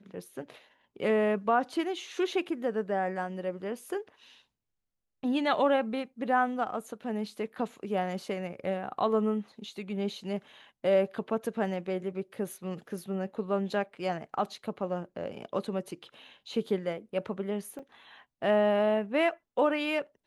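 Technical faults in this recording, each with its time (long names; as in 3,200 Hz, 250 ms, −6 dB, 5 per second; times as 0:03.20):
0:17.79: drop-out 4.3 ms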